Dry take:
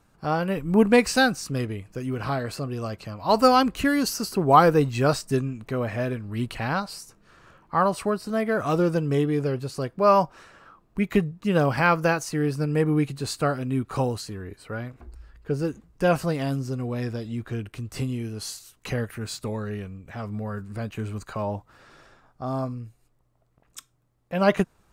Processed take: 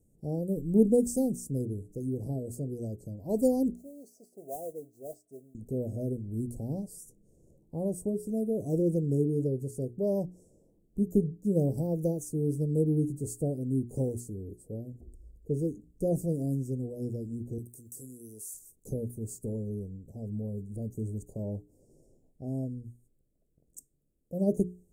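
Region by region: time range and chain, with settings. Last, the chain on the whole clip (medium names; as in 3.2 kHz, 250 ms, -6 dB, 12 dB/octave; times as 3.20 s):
3.75–5.55 s: two resonant band-passes 1.5 kHz, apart 2.3 oct + modulation noise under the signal 21 dB
17.58–18.54 s: RIAA curve recording + compression 2:1, threshold -43 dBFS
whole clip: inverse Chebyshev band-stop 1.2–3.5 kHz, stop band 60 dB; peaking EQ 6.3 kHz +2.5 dB 0.96 oct; hum notches 60/120/180/240/300/360/420 Hz; trim -3 dB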